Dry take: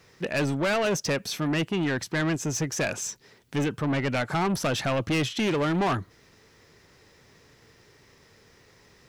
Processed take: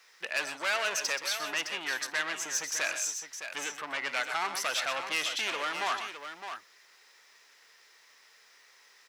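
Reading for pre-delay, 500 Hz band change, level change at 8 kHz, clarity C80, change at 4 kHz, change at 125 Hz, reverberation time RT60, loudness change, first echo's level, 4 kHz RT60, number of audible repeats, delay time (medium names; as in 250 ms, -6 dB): no reverb, -12.0 dB, +1.0 dB, no reverb, +1.0 dB, under -30 dB, no reverb, -4.5 dB, -20.0 dB, no reverb, 3, 52 ms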